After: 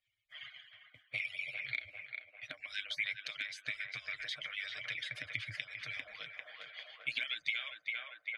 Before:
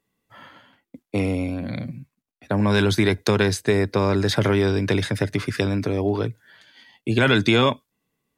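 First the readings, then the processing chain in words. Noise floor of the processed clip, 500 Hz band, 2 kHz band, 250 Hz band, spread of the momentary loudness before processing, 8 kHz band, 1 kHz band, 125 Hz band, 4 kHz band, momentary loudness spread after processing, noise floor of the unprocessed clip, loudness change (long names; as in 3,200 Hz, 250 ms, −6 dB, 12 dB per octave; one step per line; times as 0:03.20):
−71 dBFS, −38.0 dB, −10.0 dB, below −40 dB, 12 LU, −22.5 dB, −28.0 dB, −35.5 dB, −12.5 dB, 12 LU, −82 dBFS, −18.0 dB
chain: harmonic-percussive split with one part muted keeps percussive
elliptic band-stop filter 110–670 Hz, stop band 40 dB
low-shelf EQ 75 Hz +6.5 dB
comb filter 6.5 ms, depth 44%
on a send: feedback echo with a band-pass in the loop 397 ms, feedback 70%, band-pass 860 Hz, level −6 dB
on the sum: downward compressor 6 to 1, threshold −40 dBFS, peak gain reduction 20.5 dB
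in parallel at −11 dB: wrap-around overflow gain 26 dB
on the sum: formant filter i
level +15 dB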